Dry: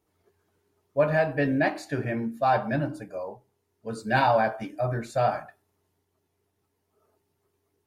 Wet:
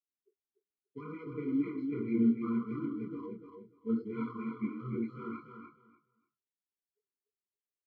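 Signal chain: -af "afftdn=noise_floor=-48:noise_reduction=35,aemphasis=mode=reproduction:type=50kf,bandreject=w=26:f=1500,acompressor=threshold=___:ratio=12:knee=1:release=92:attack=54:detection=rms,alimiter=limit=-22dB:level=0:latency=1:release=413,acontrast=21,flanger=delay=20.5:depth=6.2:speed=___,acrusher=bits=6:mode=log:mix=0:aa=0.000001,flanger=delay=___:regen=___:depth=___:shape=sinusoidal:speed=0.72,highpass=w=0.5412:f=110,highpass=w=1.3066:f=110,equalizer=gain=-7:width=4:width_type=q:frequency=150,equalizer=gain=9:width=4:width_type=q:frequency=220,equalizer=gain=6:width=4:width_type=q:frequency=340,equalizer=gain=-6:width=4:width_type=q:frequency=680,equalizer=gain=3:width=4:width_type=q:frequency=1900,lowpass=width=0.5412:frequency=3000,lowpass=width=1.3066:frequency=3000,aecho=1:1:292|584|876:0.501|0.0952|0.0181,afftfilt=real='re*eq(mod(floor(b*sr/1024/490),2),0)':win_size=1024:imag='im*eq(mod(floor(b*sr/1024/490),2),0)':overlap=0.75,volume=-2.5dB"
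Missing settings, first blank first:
-27dB, 2.4, 2, -36, 7.4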